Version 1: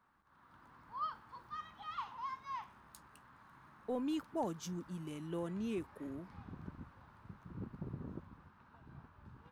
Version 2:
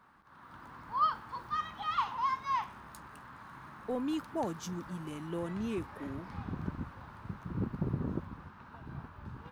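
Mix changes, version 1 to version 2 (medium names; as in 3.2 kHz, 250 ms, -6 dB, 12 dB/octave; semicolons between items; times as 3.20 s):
speech +3.0 dB; background +11.0 dB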